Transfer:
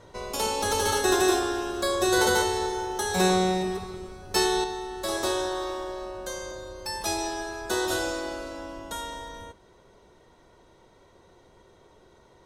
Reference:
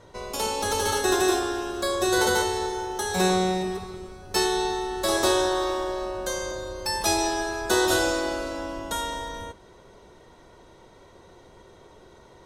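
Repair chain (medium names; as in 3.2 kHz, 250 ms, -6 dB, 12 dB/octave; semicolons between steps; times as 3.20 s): gain correction +5.5 dB, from 4.64 s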